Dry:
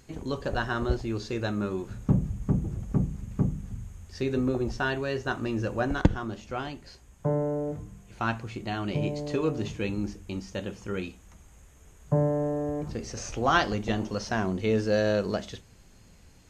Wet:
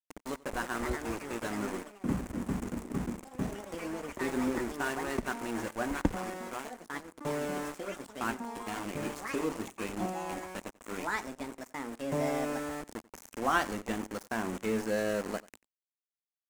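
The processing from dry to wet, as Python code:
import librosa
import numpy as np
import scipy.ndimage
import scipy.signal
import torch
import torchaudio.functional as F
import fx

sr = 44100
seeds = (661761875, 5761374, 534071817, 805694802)

p1 = np.where(np.abs(x) >= 10.0 ** (-29.5 / 20.0), x, 0.0)
p2 = fx.echo_pitch(p1, sr, ms=382, semitones=4, count=3, db_per_echo=-6.0)
p3 = fx.graphic_eq_10(p2, sr, hz=(125, 250, 1000, 2000, 4000, 8000), db=(-9, 7, 4, 4, -5, 7))
p4 = p3 + fx.echo_single(p3, sr, ms=90, db=-22.0, dry=0)
y = p4 * librosa.db_to_amplitude(-8.5)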